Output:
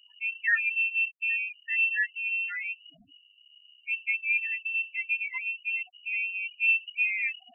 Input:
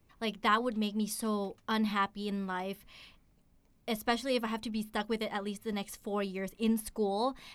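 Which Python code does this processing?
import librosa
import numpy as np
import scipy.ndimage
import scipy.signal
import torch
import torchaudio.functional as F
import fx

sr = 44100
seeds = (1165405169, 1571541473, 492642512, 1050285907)

y = fx.add_hum(x, sr, base_hz=50, snr_db=32)
y = fx.spec_topn(y, sr, count=4)
y = fx.freq_invert(y, sr, carrier_hz=2900)
y = y * 10.0 ** (5.5 / 20.0)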